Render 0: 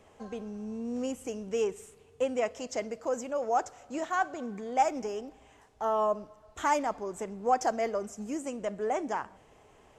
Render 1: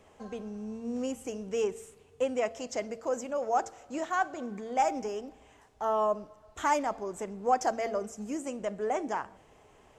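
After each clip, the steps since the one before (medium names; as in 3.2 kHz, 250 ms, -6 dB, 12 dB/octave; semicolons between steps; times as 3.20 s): de-hum 113 Hz, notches 7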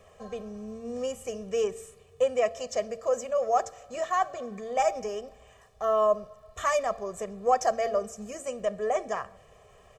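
comb 1.7 ms, depth 98%; crackle 70 per s -59 dBFS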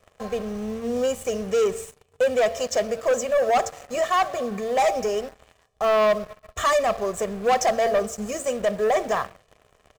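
waveshaping leveller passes 3; in parallel at -11 dB: word length cut 6-bit, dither none; on the sum: trim -4 dB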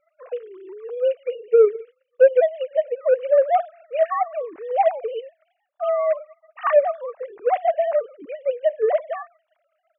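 formants replaced by sine waves; trim +2 dB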